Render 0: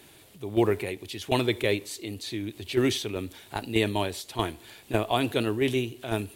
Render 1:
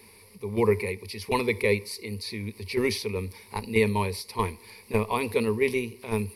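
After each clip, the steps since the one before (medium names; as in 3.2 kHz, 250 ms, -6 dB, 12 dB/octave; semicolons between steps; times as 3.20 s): rippled EQ curve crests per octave 0.88, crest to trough 17 dB; trim -2.5 dB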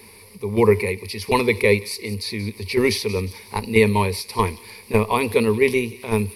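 feedback echo behind a high-pass 179 ms, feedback 46%, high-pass 3.1 kHz, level -14 dB; trim +7 dB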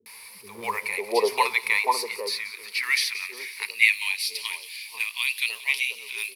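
companding laws mixed up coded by mu; three bands offset in time lows, highs, mids 60/550 ms, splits 200/930 Hz; high-pass sweep 480 Hz -> 2.9 kHz, 0.37–4.31 s; trim -1.5 dB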